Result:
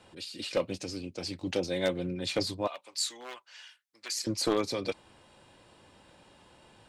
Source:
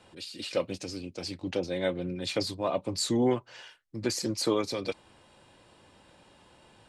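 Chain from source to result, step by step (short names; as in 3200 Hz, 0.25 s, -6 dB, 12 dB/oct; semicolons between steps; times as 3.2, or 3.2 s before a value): one-sided fold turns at -20 dBFS; 1.38–2.07 high shelf 4400 Hz +8.5 dB; 2.67–4.27 Bessel high-pass 1800 Hz, order 2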